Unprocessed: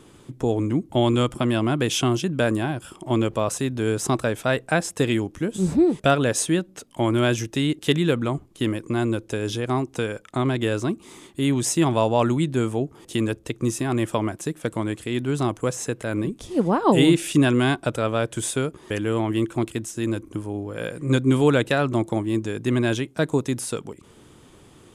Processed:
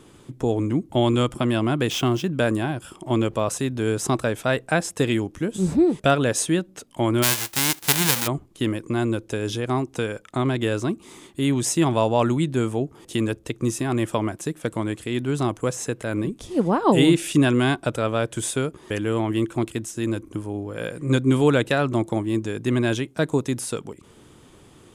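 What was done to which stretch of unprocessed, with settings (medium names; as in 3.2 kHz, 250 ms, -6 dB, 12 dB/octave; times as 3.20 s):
1.90–2.32 s: median filter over 5 samples
7.22–8.26 s: formants flattened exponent 0.1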